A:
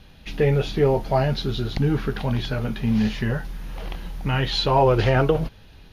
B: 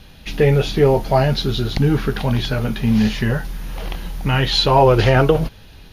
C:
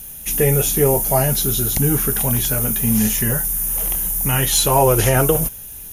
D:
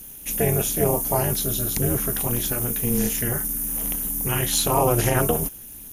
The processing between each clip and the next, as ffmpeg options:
-af "highshelf=f=5.5k:g=6.5,volume=5dB"
-af "aexciter=amount=14.8:drive=9.1:freq=6.9k,volume=-2.5dB"
-af "tremolo=f=240:d=0.947,volume=-1.5dB"

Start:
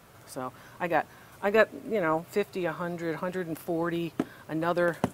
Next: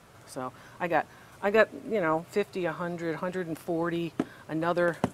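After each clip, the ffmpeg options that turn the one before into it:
-af "lowpass=11k"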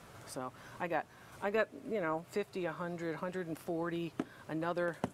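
-af "acompressor=threshold=-47dB:ratio=1.5"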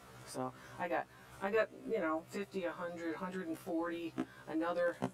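-af "afftfilt=real='re*1.73*eq(mod(b,3),0)':imag='im*1.73*eq(mod(b,3),0)':win_size=2048:overlap=0.75,volume=1dB"

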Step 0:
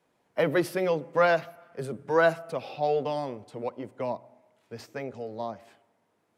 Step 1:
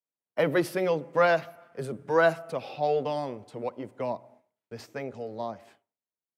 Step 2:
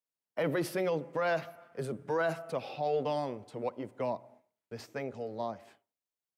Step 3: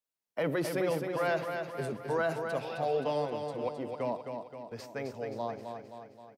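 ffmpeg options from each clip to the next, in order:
-af "agate=range=-33dB:threshold=-52dB:ratio=3:detection=peak"
-af "alimiter=limit=-20.5dB:level=0:latency=1:release=16,volume=-2dB"
-af "aecho=1:1:263|526|789|1052|1315|1578|1841:0.501|0.271|0.146|0.0789|0.0426|0.023|0.0124"

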